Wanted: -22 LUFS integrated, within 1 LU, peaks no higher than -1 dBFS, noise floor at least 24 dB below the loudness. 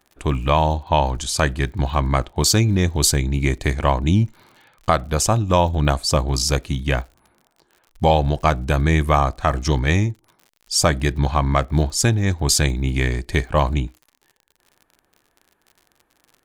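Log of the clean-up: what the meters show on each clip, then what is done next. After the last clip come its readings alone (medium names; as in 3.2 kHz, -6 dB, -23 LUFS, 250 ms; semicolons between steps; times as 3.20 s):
tick rate 58 per s; loudness -20.0 LUFS; peak level -4.0 dBFS; loudness target -22.0 LUFS
-> de-click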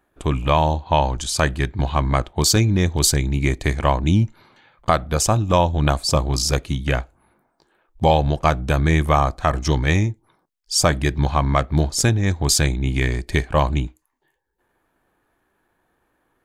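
tick rate 0.24 per s; loudness -20.0 LUFS; peak level -4.0 dBFS; loudness target -22.0 LUFS
-> trim -2 dB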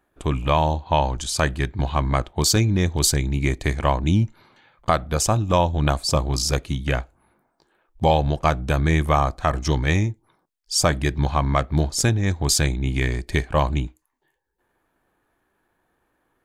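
loudness -22.0 LUFS; peak level -6.0 dBFS; noise floor -72 dBFS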